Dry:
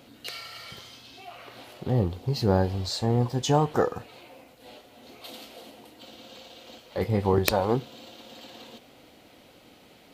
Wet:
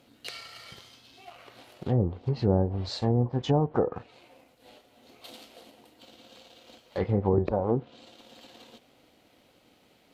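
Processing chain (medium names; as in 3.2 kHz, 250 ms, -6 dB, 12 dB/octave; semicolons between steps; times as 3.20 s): companding laws mixed up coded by A; low-pass that closes with the level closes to 610 Hz, closed at -19.5 dBFS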